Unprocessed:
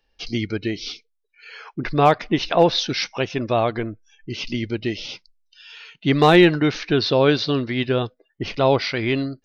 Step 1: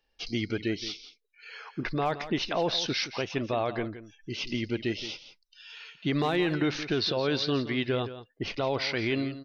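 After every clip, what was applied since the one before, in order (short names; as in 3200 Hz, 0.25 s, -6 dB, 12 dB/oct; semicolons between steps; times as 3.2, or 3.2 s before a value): low shelf 190 Hz -4 dB; limiter -14 dBFS, peak gain reduction 10 dB; echo 0.17 s -13 dB; gain -4.5 dB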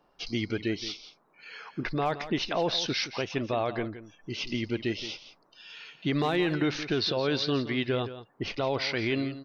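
band noise 130–1200 Hz -68 dBFS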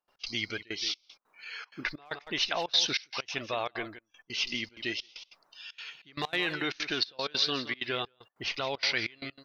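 tilt shelf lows -8.5 dB, about 700 Hz; step gate ".x.xxxxx.xxx." 192 bpm -24 dB; phaser 0.34 Hz, delay 4.7 ms, feedback 22%; gain -3.5 dB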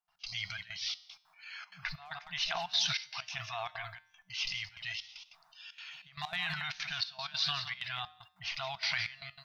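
FFT band-reject 190–640 Hz; transient shaper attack -1 dB, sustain +8 dB; resonator 83 Hz, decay 0.61 s, harmonics odd, mix 50%; gain +1 dB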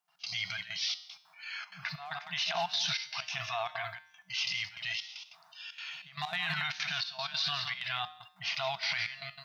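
HPF 170 Hz 12 dB/oct; harmonic-percussive split harmonic +6 dB; limiter -24.5 dBFS, peak gain reduction 8 dB; gain +2 dB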